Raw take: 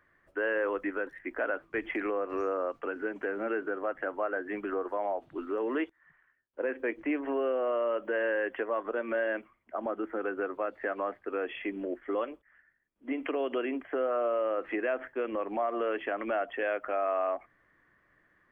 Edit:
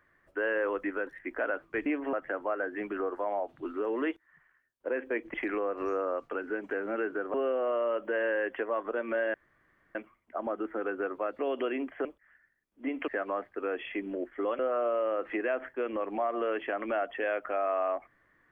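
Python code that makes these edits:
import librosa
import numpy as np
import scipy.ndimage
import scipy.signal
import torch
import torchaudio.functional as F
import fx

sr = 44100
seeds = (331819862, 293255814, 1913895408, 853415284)

y = fx.edit(x, sr, fx.swap(start_s=1.86, length_s=2.0, other_s=7.07, other_length_s=0.27),
    fx.insert_room_tone(at_s=9.34, length_s=0.61),
    fx.swap(start_s=10.78, length_s=1.51, other_s=13.32, other_length_s=0.66), tone=tone)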